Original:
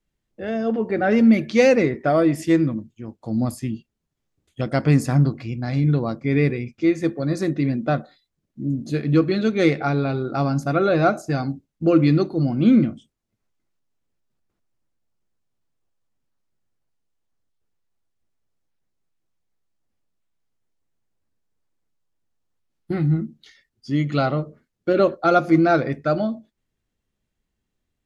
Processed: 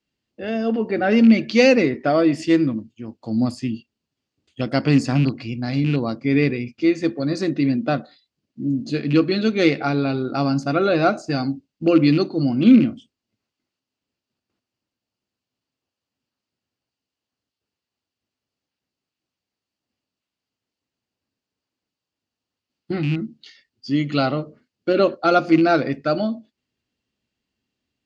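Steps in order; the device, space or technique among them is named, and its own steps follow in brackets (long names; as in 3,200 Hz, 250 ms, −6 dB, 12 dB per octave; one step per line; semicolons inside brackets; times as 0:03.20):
car door speaker with a rattle (loose part that buzzes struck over −17 dBFS, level −26 dBFS; loudspeaker in its box 92–7,700 Hz, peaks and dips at 160 Hz −4 dB, 260 Hz +5 dB, 2,800 Hz +8 dB, 4,600 Hz +9 dB)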